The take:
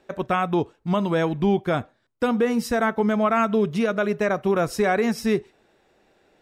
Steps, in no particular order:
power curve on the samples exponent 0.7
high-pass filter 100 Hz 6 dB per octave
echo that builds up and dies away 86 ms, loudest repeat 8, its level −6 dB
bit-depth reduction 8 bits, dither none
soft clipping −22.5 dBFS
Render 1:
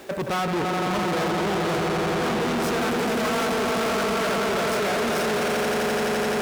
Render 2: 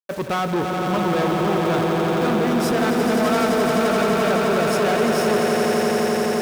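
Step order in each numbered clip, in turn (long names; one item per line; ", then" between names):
echo that builds up and dies away, then power curve on the samples, then bit-depth reduction, then soft clipping, then high-pass filter
bit-depth reduction, then soft clipping, then echo that builds up and dies away, then power curve on the samples, then high-pass filter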